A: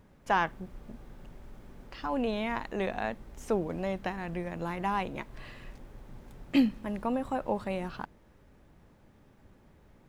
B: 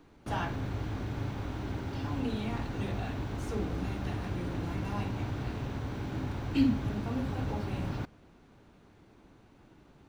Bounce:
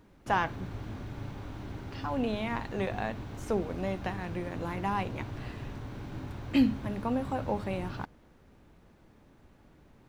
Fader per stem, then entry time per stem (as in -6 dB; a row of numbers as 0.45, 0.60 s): -1.5, -5.0 dB; 0.00, 0.00 s